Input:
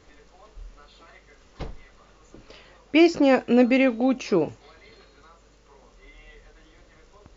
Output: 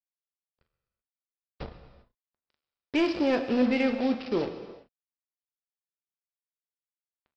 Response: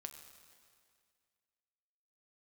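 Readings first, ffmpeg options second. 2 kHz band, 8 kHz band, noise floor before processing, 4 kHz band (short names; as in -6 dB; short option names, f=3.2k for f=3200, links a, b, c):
-6.5 dB, n/a, -56 dBFS, -5.0 dB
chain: -filter_complex "[0:a]aresample=11025,acrusher=bits=4:mix=0:aa=0.5,aresample=44100,asoftclip=type=tanh:threshold=-12dB[a];[1:a]atrim=start_sample=2205,afade=t=out:st=0.44:d=0.01,atrim=end_sample=19845[b];[a][b]afir=irnorm=-1:irlink=0"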